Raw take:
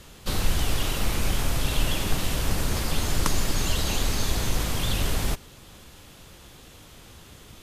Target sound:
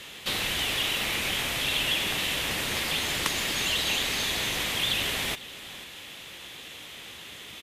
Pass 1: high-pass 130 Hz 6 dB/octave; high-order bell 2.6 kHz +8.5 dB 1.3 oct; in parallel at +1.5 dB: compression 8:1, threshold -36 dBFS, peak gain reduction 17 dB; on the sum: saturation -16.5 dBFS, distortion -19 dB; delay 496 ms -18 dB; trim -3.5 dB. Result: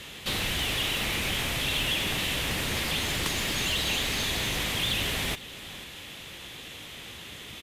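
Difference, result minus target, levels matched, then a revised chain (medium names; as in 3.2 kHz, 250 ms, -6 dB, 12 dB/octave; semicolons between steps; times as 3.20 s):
saturation: distortion +16 dB; 125 Hz band +6.5 dB
high-pass 360 Hz 6 dB/octave; high-order bell 2.6 kHz +8.5 dB 1.3 oct; in parallel at +1.5 dB: compression 8:1, threshold -36 dBFS, peak gain reduction 16.5 dB; on the sum: saturation -5 dBFS, distortion -35 dB; delay 496 ms -18 dB; trim -3.5 dB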